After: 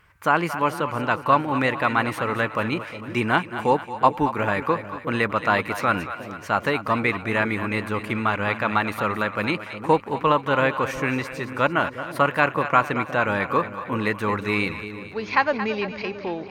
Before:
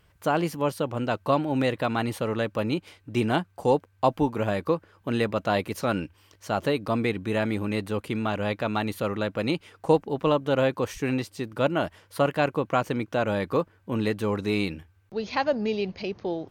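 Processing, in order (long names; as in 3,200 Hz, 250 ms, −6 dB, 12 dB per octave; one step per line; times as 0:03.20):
flat-topped bell 1,500 Hz +10 dB
on a send: echo with a time of its own for lows and highs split 590 Hz, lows 360 ms, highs 225 ms, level −11 dB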